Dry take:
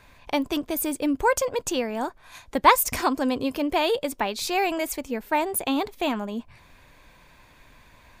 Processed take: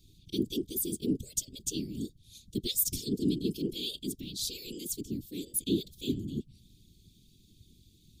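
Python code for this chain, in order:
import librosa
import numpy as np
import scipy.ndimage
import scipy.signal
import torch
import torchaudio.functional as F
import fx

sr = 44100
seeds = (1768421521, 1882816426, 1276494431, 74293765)

y = scipy.signal.sosfilt(scipy.signal.cheby1(4, 1.0, [280.0, 3400.0], 'bandstop', fs=sr, output='sos'), x)
y = fx.whisperise(y, sr, seeds[0])
y = y * librosa.db_to_amplitude(-3.0)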